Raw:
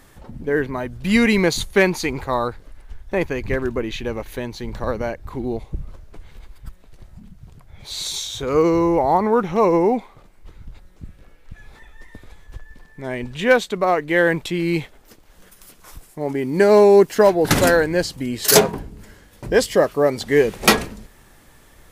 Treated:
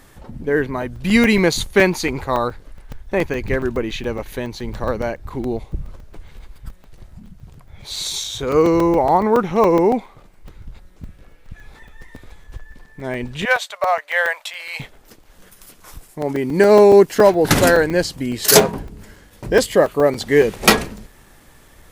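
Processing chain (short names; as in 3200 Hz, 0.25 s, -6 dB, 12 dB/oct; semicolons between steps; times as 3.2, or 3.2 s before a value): 13.45–14.8 elliptic high-pass 580 Hz, stop band 40 dB; 16.85–17.38 short-mantissa float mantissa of 8-bit; 19.63–20.13 bell 5400 Hz -9 dB 0.26 oct; crackling interface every 0.14 s, samples 128, zero, from 0.82; gain +2 dB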